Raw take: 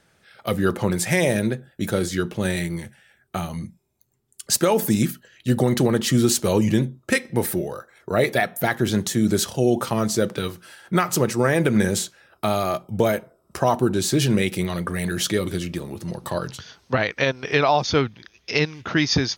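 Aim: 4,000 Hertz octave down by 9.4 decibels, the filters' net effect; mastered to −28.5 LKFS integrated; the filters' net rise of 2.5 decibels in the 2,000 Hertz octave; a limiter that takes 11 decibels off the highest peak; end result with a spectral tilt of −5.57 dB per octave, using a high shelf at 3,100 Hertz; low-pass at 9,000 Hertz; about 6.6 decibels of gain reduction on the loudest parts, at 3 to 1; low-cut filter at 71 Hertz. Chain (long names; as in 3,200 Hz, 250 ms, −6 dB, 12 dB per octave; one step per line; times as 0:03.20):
high-pass filter 71 Hz
low-pass filter 9,000 Hz
parametric band 2,000 Hz +7.5 dB
high-shelf EQ 3,100 Hz −9 dB
parametric band 4,000 Hz −7.5 dB
downward compressor 3 to 1, threshold −23 dBFS
level +2.5 dB
brickwall limiter −16.5 dBFS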